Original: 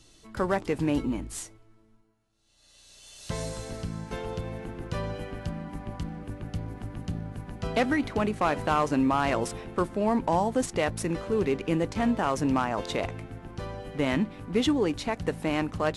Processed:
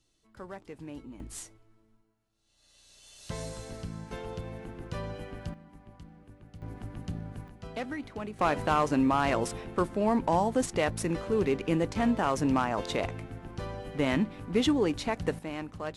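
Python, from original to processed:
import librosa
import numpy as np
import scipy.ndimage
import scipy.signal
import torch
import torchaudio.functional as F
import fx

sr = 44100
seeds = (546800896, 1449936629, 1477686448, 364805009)

y = fx.gain(x, sr, db=fx.steps((0.0, -16.5), (1.2, -4.5), (5.54, -15.0), (6.62, -3.5), (7.48, -11.0), (8.39, -1.0), (15.39, -9.5)))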